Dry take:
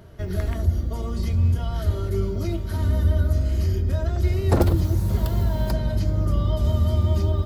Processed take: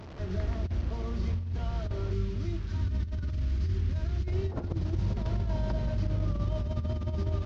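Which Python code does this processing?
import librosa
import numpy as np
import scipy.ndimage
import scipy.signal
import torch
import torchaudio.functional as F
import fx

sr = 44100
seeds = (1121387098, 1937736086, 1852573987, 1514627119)

y = fx.delta_mod(x, sr, bps=32000, step_db=-32.0)
y = fx.peak_eq(y, sr, hz=620.0, db=-10.5, octaves=1.5, at=(2.13, 4.28))
y = fx.over_compress(y, sr, threshold_db=-21.0, ratio=-0.5)
y = fx.high_shelf(y, sr, hz=2200.0, db=-9.0)
y = y * 10.0 ** (-7.0 / 20.0)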